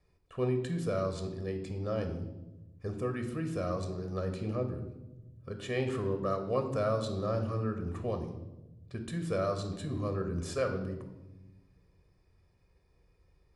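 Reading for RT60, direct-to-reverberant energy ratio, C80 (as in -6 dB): 1.0 s, 5.5 dB, 11.0 dB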